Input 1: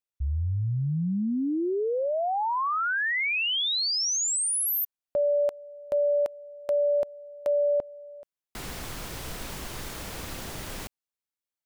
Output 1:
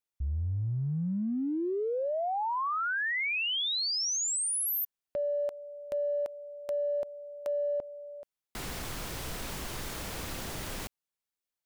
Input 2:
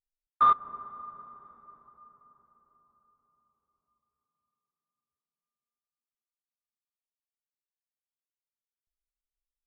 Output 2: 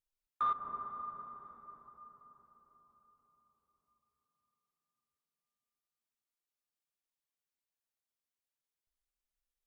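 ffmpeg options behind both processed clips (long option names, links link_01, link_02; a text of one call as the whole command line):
ffmpeg -i in.wav -af "acompressor=threshold=-28dB:ratio=12:attack=0.51:release=38:knee=6:detection=rms" out.wav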